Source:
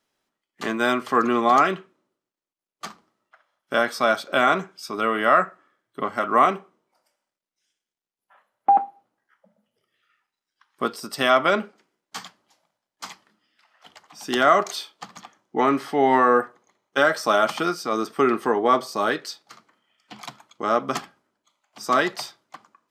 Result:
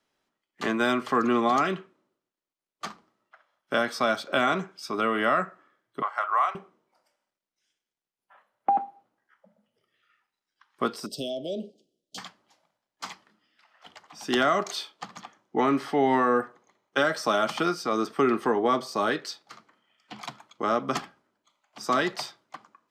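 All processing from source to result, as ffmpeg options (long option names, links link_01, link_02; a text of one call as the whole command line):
ffmpeg -i in.wav -filter_complex "[0:a]asettb=1/sr,asplit=3[link_01][link_02][link_03];[link_01]atrim=end=6.024[link_04];[link_02]atrim=start=6.02:end=6.55,asetpts=PTS-STARTPTS,afade=type=in:duration=0.004:curve=qsin,afade=type=out:start_time=0.526:duration=0.004:curve=qsin,highpass=frequency=880:width=0.5412,highpass=frequency=880:width=1.3066,tiltshelf=frequency=1400:gain=8[link_05];[link_03]atrim=start=6.546[link_06];[link_04][link_05]acrossfade=duration=0.004:curve1=hsin:curve2=qsin[link_07];[link_07][link_06]acrossfade=duration=0.004:curve1=qsin:curve2=hsin,asettb=1/sr,asplit=3[link_08][link_09][link_10];[link_08]atrim=end=11.064[link_11];[link_09]atrim=start=11.06:end=12.18,asetpts=PTS-STARTPTS,afade=type=in:duration=0.004:curve=qsin,afade=type=out:start_time=1.116:duration=0.004:curve=qsin,acompressor=threshold=-30dB:ratio=2:attack=3.2:release=140:knee=1:detection=peak,asuperstop=centerf=1400:order=12:qfactor=0.59[link_12];[link_10]atrim=start=12.176[link_13];[link_11][link_12]acrossfade=duration=0.004:curve1=hsin:curve2=qsin[link_14];[link_14][link_13]acrossfade=duration=0.004:curve1=qsin:curve2=hsin,highshelf=frequency=8300:gain=-9,acrossover=split=300|3000[link_15][link_16][link_17];[link_16]acompressor=threshold=-24dB:ratio=2.5[link_18];[link_15][link_18][link_17]amix=inputs=3:normalize=0" out.wav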